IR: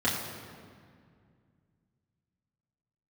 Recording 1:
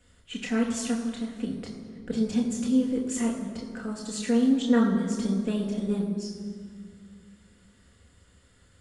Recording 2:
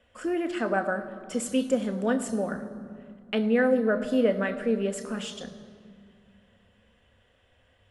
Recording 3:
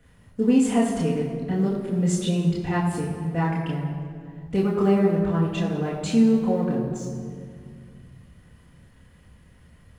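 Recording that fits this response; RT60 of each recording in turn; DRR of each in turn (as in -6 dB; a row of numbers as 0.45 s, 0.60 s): 3; 2.1 s, 2.1 s, 2.1 s; -2.0 dB, 7.0 dB, -8.0 dB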